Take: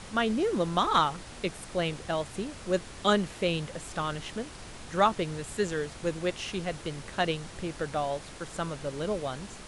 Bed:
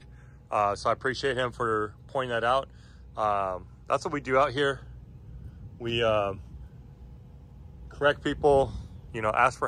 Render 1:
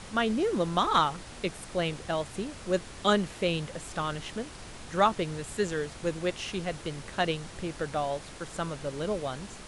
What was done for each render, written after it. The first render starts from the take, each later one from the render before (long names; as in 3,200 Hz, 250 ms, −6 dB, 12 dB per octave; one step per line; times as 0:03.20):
no processing that can be heard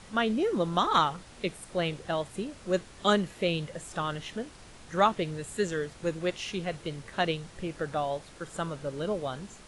noise reduction from a noise print 6 dB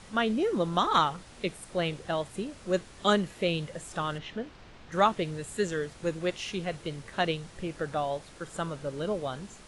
0:04.18–0:04.92: low-pass filter 3,900 Hz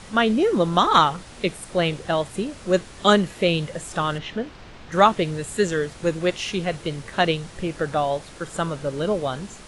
level +8 dB